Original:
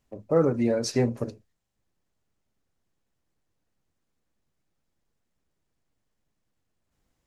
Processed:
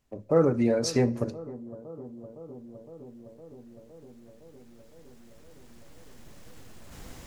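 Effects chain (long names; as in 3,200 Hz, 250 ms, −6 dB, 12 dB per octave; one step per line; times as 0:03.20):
camcorder AGC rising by 5.5 dB per second
bucket-brigade delay 511 ms, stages 4,096, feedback 78%, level −17.5 dB
on a send at −21.5 dB: convolution reverb RT60 1.0 s, pre-delay 56 ms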